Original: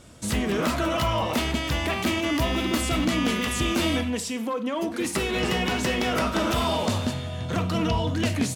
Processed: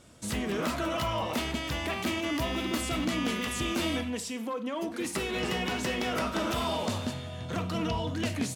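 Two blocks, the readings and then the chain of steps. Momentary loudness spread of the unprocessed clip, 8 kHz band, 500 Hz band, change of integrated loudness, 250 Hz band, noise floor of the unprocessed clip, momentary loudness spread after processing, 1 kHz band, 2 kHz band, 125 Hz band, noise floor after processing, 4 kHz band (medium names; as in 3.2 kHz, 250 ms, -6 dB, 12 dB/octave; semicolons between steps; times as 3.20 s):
4 LU, -5.5 dB, -5.5 dB, -6.0 dB, -6.0 dB, -33 dBFS, 4 LU, -5.5 dB, -5.5 dB, -7.5 dB, -39 dBFS, -5.5 dB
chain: bass shelf 84 Hz -5.5 dB; trim -5.5 dB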